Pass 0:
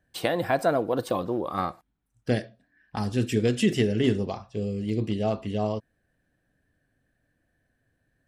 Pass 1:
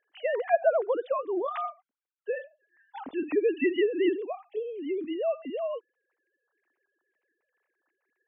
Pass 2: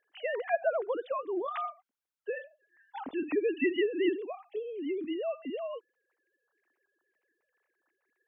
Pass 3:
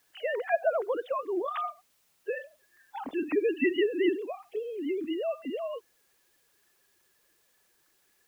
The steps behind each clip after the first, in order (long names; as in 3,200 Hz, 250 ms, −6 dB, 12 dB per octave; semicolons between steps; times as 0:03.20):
three sine waves on the formant tracks; level −2.5 dB
dynamic equaliser 620 Hz, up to −6 dB, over −37 dBFS, Q 0.85
spectral magnitudes quantised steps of 15 dB; bit-depth reduction 12 bits, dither triangular; level +2.5 dB